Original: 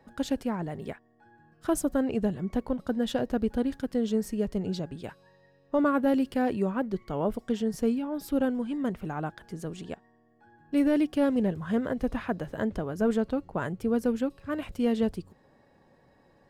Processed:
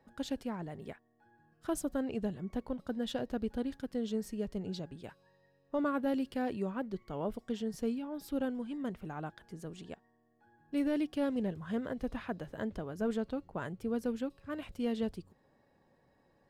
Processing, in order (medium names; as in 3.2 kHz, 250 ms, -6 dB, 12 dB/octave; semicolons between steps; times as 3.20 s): dynamic bell 3.8 kHz, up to +4 dB, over -52 dBFS, Q 1.2; trim -8 dB